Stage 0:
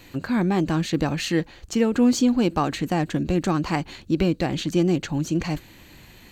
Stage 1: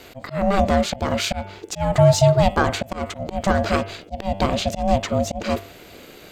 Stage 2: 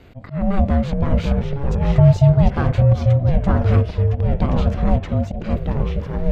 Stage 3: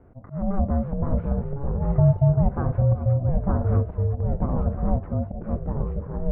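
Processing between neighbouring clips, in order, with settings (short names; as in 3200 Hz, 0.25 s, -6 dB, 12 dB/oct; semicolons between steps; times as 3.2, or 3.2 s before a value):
de-hum 97.35 Hz, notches 32; auto swell 0.186 s; ring modulator 390 Hz; gain +7.5 dB
tone controls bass +14 dB, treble -14 dB; echoes that change speed 0.423 s, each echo -3 st, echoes 2; gain -7 dB
LPF 1300 Hz 24 dB/oct; gain -6 dB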